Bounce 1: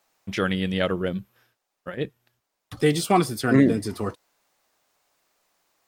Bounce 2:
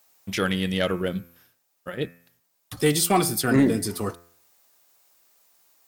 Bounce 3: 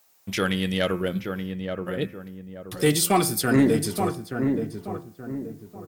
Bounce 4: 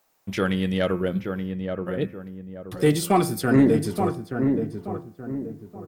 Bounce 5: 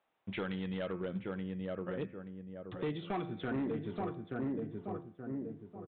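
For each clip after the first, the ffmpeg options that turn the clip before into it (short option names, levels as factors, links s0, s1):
-af "aemphasis=mode=production:type=50kf,bandreject=f=85.76:t=h:w=4,bandreject=f=171.52:t=h:w=4,bandreject=f=257.28:t=h:w=4,bandreject=f=343.04:t=h:w=4,bandreject=f=428.8:t=h:w=4,bandreject=f=514.56:t=h:w=4,bandreject=f=600.32:t=h:w=4,bandreject=f=686.08:t=h:w=4,bandreject=f=771.84:t=h:w=4,bandreject=f=857.6:t=h:w=4,bandreject=f=943.36:t=h:w=4,bandreject=f=1029.12:t=h:w=4,bandreject=f=1114.88:t=h:w=4,bandreject=f=1200.64:t=h:w=4,bandreject=f=1286.4:t=h:w=4,bandreject=f=1372.16:t=h:w=4,bandreject=f=1457.92:t=h:w=4,bandreject=f=1543.68:t=h:w=4,bandreject=f=1629.44:t=h:w=4,bandreject=f=1715.2:t=h:w=4,bandreject=f=1800.96:t=h:w=4,bandreject=f=1886.72:t=h:w=4,bandreject=f=1972.48:t=h:w=4,bandreject=f=2058.24:t=h:w=4,bandreject=f=2144:t=h:w=4,bandreject=f=2229.76:t=h:w=4,bandreject=f=2315.52:t=h:w=4,bandreject=f=2401.28:t=h:w=4,bandreject=f=2487.04:t=h:w=4,bandreject=f=2572.8:t=h:w=4,asoftclip=type=tanh:threshold=0.355"
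-filter_complex "[0:a]asplit=2[s0][s1];[s1]adelay=877,lowpass=f=1100:p=1,volume=0.562,asplit=2[s2][s3];[s3]adelay=877,lowpass=f=1100:p=1,volume=0.39,asplit=2[s4][s5];[s5]adelay=877,lowpass=f=1100:p=1,volume=0.39,asplit=2[s6][s7];[s7]adelay=877,lowpass=f=1100:p=1,volume=0.39,asplit=2[s8][s9];[s9]adelay=877,lowpass=f=1100:p=1,volume=0.39[s10];[s0][s2][s4][s6][s8][s10]amix=inputs=6:normalize=0"
-af "highshelf=f=2200:g=-10.5,volume=1.26"
-af "highpass=f=87:p=1,acompressor=threshold=0.0501:ratio=3,aresample=8000,volume=13.3,asoftclip=hard,volume=0.075,aresample=44100,volume=0.398"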